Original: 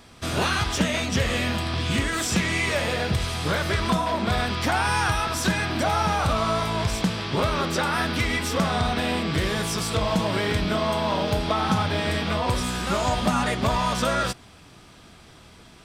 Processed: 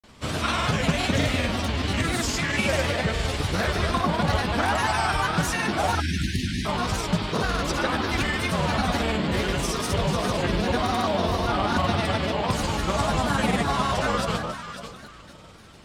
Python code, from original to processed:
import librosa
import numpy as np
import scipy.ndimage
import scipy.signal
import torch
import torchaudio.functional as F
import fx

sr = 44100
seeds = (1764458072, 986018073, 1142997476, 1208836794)

y = fx.echo_alternate(x, sr, ms=239, hz=1300.0, feedback_pct=55, wet_db=-4.0)
y = fx.spec_erase(y, sr, start_s=5.97, length_s=0.68, low_hz=370.0, high_hz=1500.0)
y = fx.granulator(y, sr, seeds[0], grain_ms=100.0, per_s=20.0, spray_ms=100.0, spread_st=3)